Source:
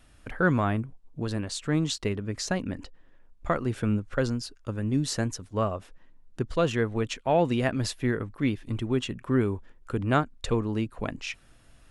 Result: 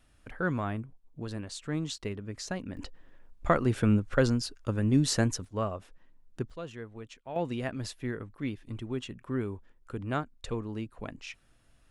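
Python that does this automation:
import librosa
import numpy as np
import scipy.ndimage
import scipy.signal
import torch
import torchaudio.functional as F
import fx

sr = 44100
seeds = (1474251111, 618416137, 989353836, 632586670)

y = fx.gain(x, sr, db=fx.steps((0.0, -7.0), (2.77, 2.0), (5.45, -4.5), (6.5, -16.0), (7.36, -8.0)))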